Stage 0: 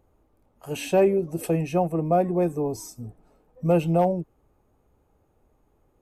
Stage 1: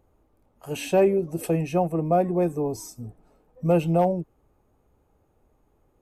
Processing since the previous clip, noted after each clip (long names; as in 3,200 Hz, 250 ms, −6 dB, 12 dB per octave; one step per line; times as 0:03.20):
no processing that can be heard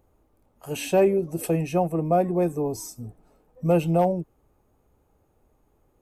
high-shelf EQ 6,400 Hz +4.5 dB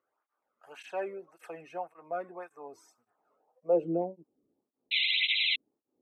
band-pass filter sweep 1,400 Hz → 260 Hz, 0:03.12–0:04.09
sound drawn into the spectrogram noise, 0:04.91–0:05.56, 2,000–4,100 Hz −25 dBFS
through-zero flanger with one copy inverted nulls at 1.8 Hz, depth 1.3 ms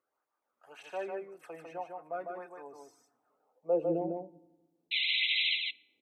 single-tap delay 151 ms −4 dB
feedback delay network reverb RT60 1.1 s, low-frequency decay 1.35×, high-frequency decay 0.65×, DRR 20 dB
level −3 dB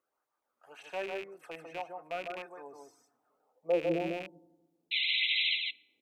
loose part that buzzes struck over −54 dBFS, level −32 dBFS